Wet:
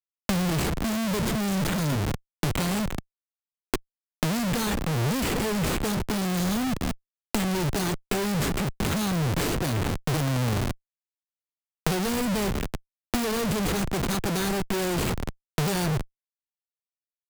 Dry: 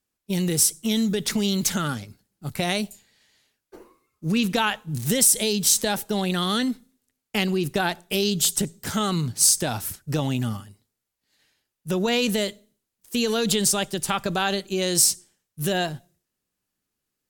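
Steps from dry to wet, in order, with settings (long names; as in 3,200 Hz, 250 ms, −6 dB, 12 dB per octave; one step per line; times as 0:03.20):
mu-law and A-law mismatch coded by A
high-frequency loss of the air 100 metres
on a send: repeating echo 194 ms, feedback 56%, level −24 dB
on the sum: sample-rate reduction 5,200 Hz, jitter 0%
in parallel at +2.5 dB: downward compressor 6 to 1, threshold −32 dBFS, peak gain reduction 13.5 dB
on the sum: flat-topped bell 1,500 Hz −15 dB 2.8 octaves
comparator with hysteresis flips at −37 dBFS
multiband upward and downward compressor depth 100%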